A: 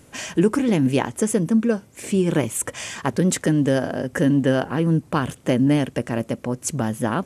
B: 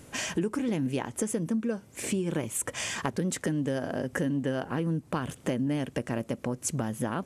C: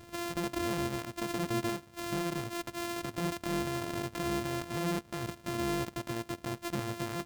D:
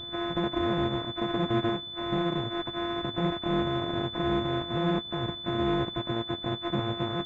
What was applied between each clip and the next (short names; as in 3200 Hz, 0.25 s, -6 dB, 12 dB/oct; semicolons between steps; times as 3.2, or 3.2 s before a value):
compressor 4:1, threshold -28 dBFS, peak gain reduction 13.5 dB
sample sorter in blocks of 128 samples; limiter -24.5 dBFS, peak gain reduction 10 dB; gain -1.5 dB
nonlinear frequency compression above 1100 Hz 1.5:1; pulse-width modulation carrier 3500 Hz; gain +6 dB